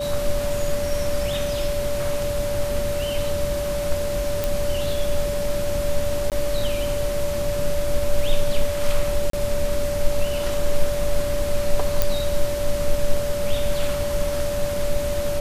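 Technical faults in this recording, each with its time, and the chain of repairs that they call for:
whine 580 Hz -24 dBFS
4.44 s: pop
6.30–6.32 s: dropout 18 ms
9.30–9.33 s: dropout 33 ms
12.02 s: pop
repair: de-click; band-stop 580 Hz, Q 30; interpolate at 6.30 s, 18 ms; interpolate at 9.30 s, 33 ms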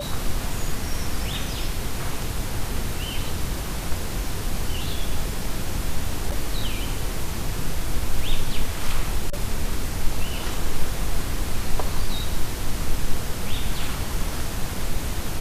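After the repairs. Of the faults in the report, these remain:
nothing left

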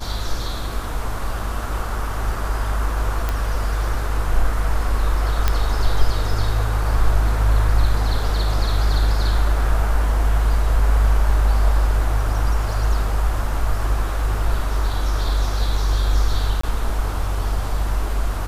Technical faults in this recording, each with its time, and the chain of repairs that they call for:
3.29 s: pop
5.48 s: pop -4 dBFS
16.61–16.63 s: dropout 24 ms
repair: de-click; interpolate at 16.61 s, 24 ms

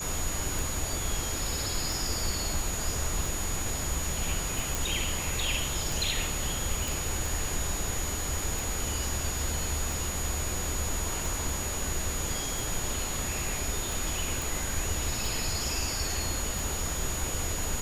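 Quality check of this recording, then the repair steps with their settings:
tick 45 rpm
whine 6.8 kHz -35 dBFS
4.75 s: pop
6.88 s: pop
14.42 s: pop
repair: de-click; band-stop 6.8 kHz, Q 30

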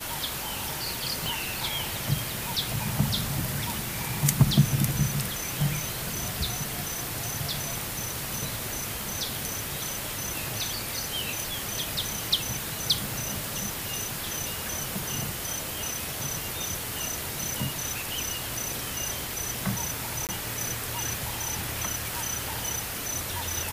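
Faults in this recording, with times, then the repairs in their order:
1.26 s: pop
20.27–20.29 s: dropout 18 ms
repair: de-click; interpolate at 20.27 s, 18 ms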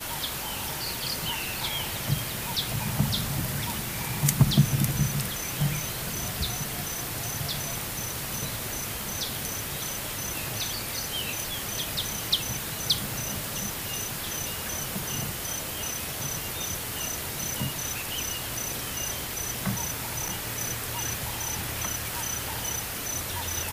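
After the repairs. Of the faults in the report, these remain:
nothing left

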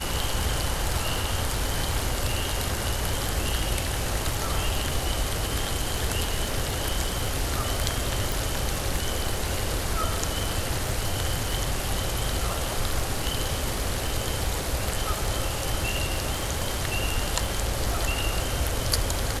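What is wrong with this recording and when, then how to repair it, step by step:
crackle 28 per s -30 dBFS
8.32 s: pop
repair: de-click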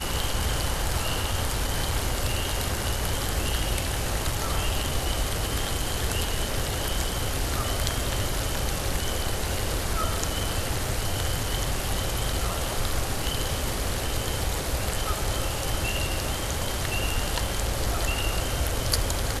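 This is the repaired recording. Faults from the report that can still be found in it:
nothing left

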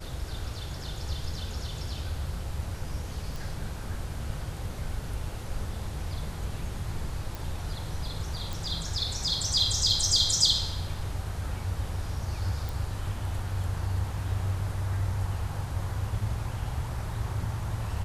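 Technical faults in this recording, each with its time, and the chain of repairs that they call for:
3.36 s: pop
7.35 s: pop
8.53 s: pop
12.69 s: pop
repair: de-click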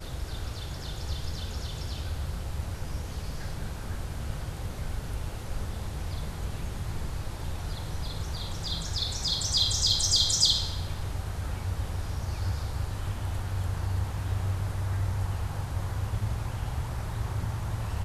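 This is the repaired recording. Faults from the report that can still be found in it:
nothing left

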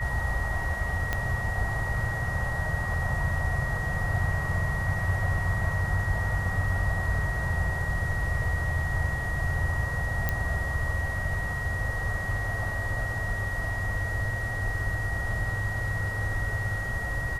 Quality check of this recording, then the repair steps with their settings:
whine 1.9 kHz -32 dBFS
1.13 s: pop -13 dBFS
10.29 s: pop -12 dBFS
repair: de-click; band-stop 1.9 kHz, Q 30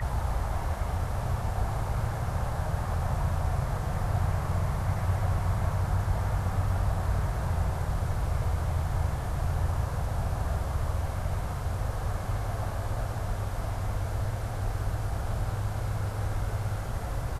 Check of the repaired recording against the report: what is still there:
1.13 s: pop

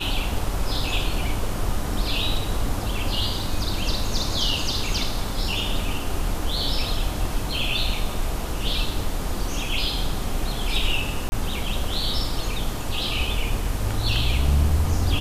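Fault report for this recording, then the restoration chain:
11.29–11.32 s: dropout 30 ms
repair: interpolate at 11.29 s, 30 ms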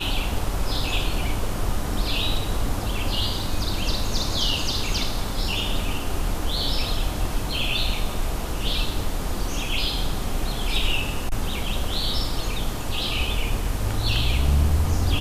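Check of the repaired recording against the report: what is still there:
nothing left

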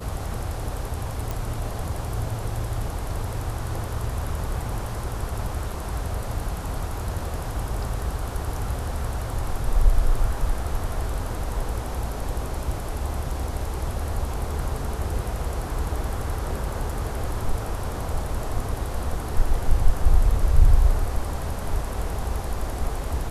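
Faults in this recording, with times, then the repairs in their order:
1.31 s: pop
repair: de-click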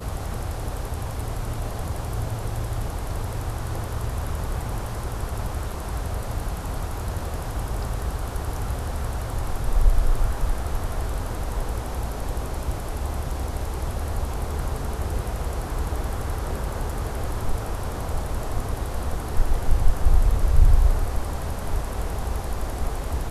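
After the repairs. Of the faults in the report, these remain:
nothing left

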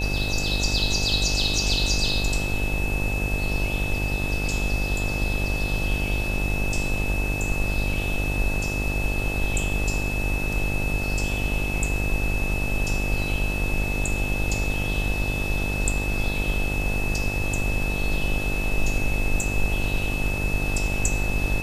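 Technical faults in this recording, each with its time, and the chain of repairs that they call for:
buzz 50 Hz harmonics 18 -28 dBFS
whine 2.6 kHz -29 dBFS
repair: band-stop 2.6 kHz, Q 30; de-hum 50 Hz, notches 18

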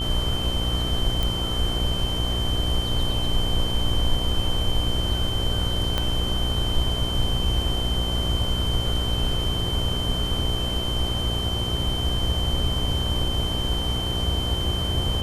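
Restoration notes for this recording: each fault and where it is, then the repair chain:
buzz 60 Hz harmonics 20 -28 dBFS
whine 3.1 kHz -28 dBFS
1.23 s: pop
5.98 s: pop -10 dBFS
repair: de-click; band-stop 3.1 kHz, Q 30; de-hum 60 Hz, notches 20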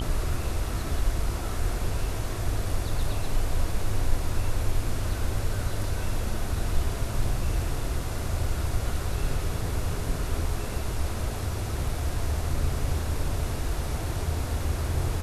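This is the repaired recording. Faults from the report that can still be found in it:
5.98 s: pop

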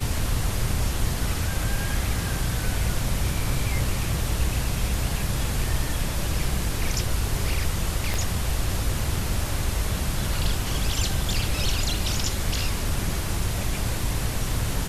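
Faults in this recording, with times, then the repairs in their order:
8.14 s: pop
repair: de-click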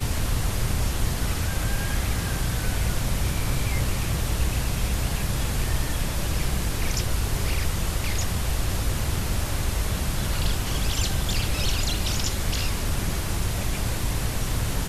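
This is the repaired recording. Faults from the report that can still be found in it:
8.14 s: pop

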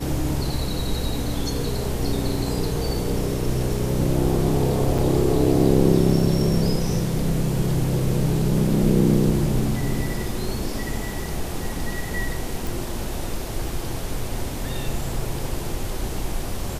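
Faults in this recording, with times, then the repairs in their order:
4.98–4.99 s: dropout 6 ms
12.67 s: pop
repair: de-click; interpolate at 4.98 s, 6 ms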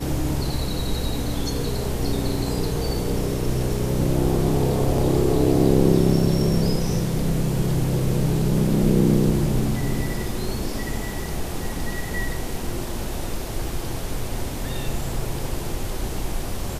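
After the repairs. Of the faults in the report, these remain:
nothing left

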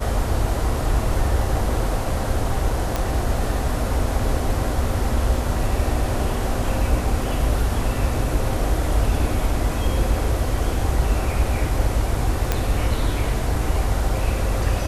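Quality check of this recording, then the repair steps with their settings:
2.96 s: pop
12.52 s: pop -5 dBFS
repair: de-click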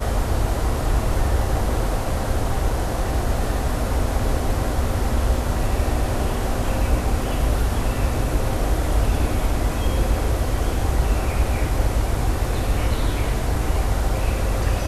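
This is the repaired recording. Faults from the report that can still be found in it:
nothing left

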